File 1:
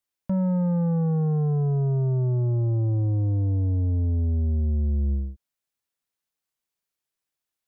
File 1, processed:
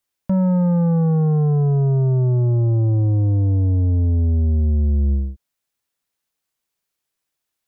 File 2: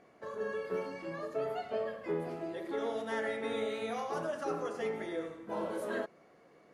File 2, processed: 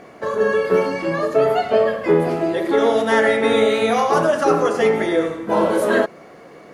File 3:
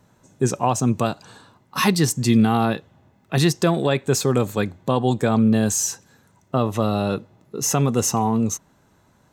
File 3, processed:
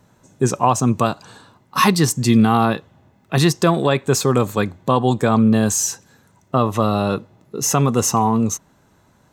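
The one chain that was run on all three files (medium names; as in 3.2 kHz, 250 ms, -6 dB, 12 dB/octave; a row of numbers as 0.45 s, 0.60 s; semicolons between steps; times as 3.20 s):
dynamic bell 1.1 kHz, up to +6 dB, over -41 dBFS, Q 2.9; normalise loudness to -18 LUFS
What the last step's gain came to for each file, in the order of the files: +6.0 dB, +19.5 dB, +2.5 dB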